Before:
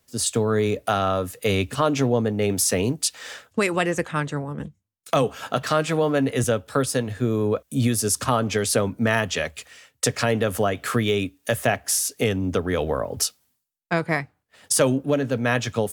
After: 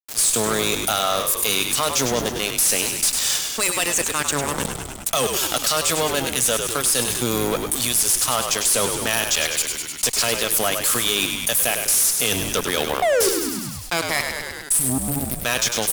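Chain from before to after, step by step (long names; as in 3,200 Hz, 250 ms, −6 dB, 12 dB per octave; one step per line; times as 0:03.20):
first-order pre-emphasis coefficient 0.97
healed spectral selection 0:14.52–0:15.40, 300–7,600 Hz before
parametric band 1,800 Hz −7.5 dB 0.92 octaves
reversed playback
upward compression, threshold −31 dBFS
reversed playback
sound drawn into the spectrogram fall, 0:13.02–0:13.29, 360–750 Hz −26 dBFS
fuzz pedal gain 35 dB, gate −43 dBFS
on a send: echo with shifted repeats 101 ms, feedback 56%, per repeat −60 Hz, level −10 dB
on the sum: envelope flattener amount 50%
level −3.5 dB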